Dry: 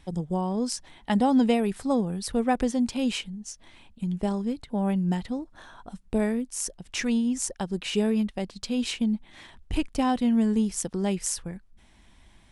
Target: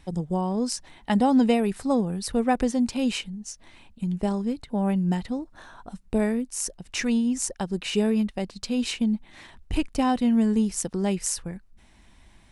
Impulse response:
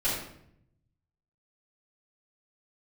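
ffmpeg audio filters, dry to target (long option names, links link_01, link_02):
-af "bandreject=frequency=3300:width=16,volume=1.5dB"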